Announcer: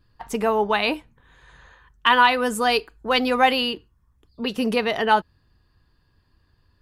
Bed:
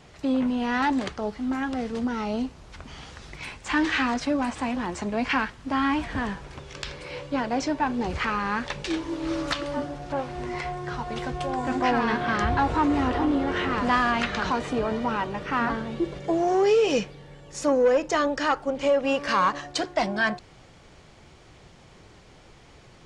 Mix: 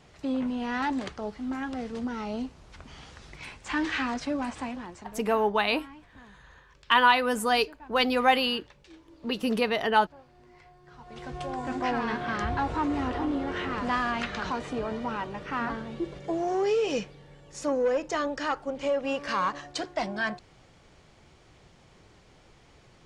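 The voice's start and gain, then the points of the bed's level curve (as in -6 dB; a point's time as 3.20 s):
4.85 s, -4.0 dB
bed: 4.60 s -5 dB
5.41 s -23.5 dB
10.80 s -23.5 dB
11.36 s -5.5 dB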